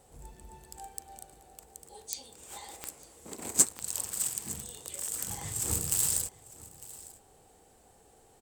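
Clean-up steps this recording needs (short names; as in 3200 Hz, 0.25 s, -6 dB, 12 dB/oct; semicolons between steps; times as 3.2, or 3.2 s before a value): de-click; inverse comb 0.903 s -19.5 dB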